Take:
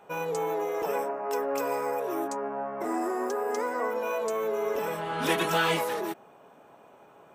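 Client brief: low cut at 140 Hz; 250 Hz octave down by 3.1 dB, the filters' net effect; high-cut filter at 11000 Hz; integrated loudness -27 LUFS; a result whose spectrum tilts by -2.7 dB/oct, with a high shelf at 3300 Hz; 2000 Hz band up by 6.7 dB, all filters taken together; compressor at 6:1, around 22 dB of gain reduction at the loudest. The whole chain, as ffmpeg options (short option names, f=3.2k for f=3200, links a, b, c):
-af "highpass=140,lowpass=11k,equalizer=f=250:t=o:g=-4.5,equalizer=f=2k:t=o:g=8,highshelf=f=3.3k:g=3.5,acompressor=threshold=-43dB:ratio=6,volume=17.5dB"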